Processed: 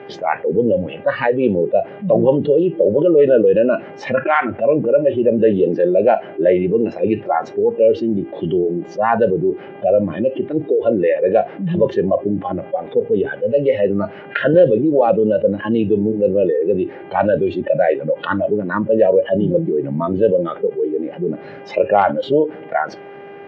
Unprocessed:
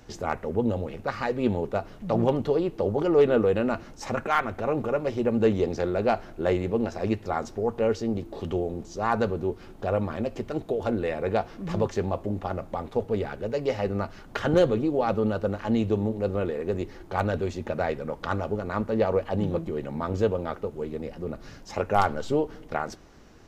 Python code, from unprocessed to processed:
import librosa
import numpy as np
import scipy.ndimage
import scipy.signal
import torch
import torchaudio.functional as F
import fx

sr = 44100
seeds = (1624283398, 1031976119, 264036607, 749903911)

y = fx.dmg_buzz(x, sr, base_hz=400.0, harmonics=8, level_db=-50.0, tilt_db=-6, odd_only=False)
y = fx.noise_reduce_blind(y, sr, reduce_db=20)
y = fx.cabinet(y, sr, low_hz=150.0, low_slope=24, high_hz=2500.0, hz=(230.0, 570.0, 1200.0), db=(-7, 8, -8))
y = fx.env_flatten(y, sr, amount_pct=50)
y = y * 10.0 ** (4.0 / 20.0)